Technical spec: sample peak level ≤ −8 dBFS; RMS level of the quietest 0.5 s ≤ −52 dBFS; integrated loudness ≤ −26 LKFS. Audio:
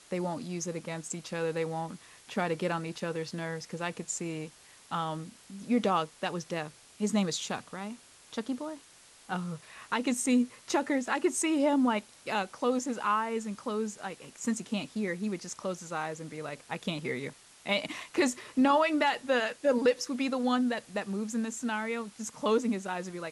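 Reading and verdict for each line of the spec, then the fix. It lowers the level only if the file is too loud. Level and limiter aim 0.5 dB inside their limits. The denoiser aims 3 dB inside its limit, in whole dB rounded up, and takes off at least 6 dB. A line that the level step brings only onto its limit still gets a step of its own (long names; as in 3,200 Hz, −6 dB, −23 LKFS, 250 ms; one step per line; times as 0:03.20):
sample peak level −14.0 dBFS: in spec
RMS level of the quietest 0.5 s −57 dBFS: in spec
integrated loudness −31.5 LKFS: in spec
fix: no processing needed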